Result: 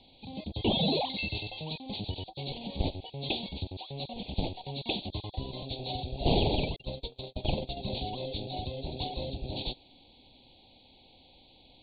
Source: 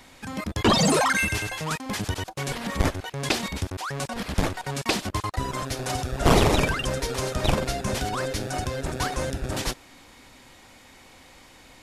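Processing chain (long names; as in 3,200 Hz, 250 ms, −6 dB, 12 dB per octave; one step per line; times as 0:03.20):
hearing-aid frequency compression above 3,200 Hz 4 to 1
Chebyshev band-stop filter 830–2,600 Hz, order 3
0:06.76–0:07.77: noise gate −26 dBFS, range −57 dB
level −7 dB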